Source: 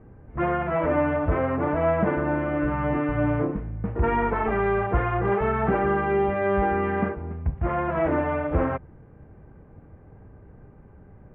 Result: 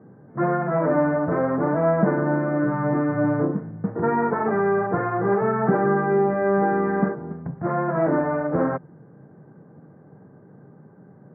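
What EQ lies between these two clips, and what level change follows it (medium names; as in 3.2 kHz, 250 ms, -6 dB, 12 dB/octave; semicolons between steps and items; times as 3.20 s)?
elliptic band-pass 150–1700 Hz, stop band 40 dB; distance through air 78 m; bass shelf 200 Hz +7 dB; +2.0 dB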